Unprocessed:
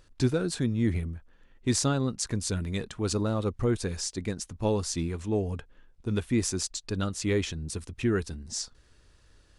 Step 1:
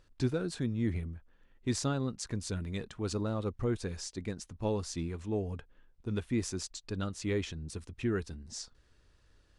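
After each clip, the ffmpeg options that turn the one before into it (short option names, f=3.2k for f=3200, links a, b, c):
-af "highshelf=f=7.6k:g=-8.5,volume=-5.5dB"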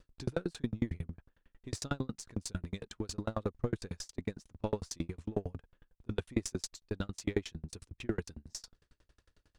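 -af "aeval=exprs='if(lt(val(0),0),0.708*val(0),val(0))':c=same,aeval=exprs='val(0)*pow(10,-39*if(lt(mod(11*n/s,1),2*abs(11)/1000),1-mod(11*n/s,1)/(2*abs(11)/1000),(mod(11*n/s,1)-2*abs(11)/1000)/(1-2*abs(11)/1000))/20)':c=same,volume=7.5dB"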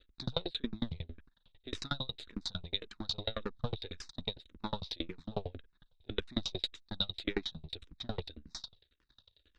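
-filter_complex "[0:a]aeval=exprs='if(lt(val(0),0),0.251*val(0),val(0))':c=same,lowpass=f=3.8k:t=q:w=15,asplit=2[a][b];[b]afreqshift=-1.8[c];[a][c]amix=inputs=2:normalize=1,volume=2.5dB"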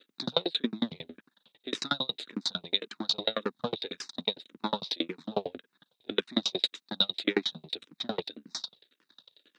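-af "highpass=f=200:w=0.5412,highpass=f=200:w=1.3066,volume=8dB"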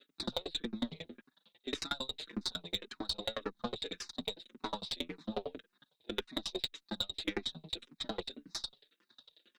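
-filter_complex "[0:a]acompressor=threshold=-29dB:ratio=6,aeval=exprs='0.211*(cos(1*acos(clip(val(0)/0.211,-1,1)))-cos(1*PI/2))+0.015*(cos(6*acos(clip(val(0)/0.211,-1,1)))-cos(6*PI/2))':c=same,asplit=2[a][b];[b]adelay=5,afreqshift=2.4[c];[a][c]amix=inputs=2:normalize=1"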